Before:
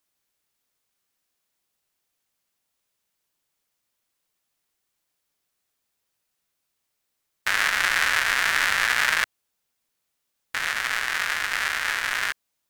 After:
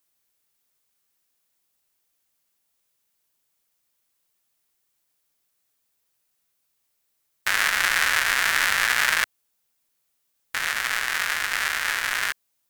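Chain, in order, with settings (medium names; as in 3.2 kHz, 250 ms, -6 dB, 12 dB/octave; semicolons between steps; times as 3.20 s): treble shelf 8.3 kHz +7 dB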